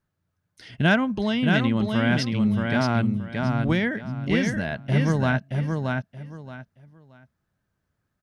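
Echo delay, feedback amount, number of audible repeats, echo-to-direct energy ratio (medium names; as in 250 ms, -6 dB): 625 ms, 23%, 3, -4.0 dB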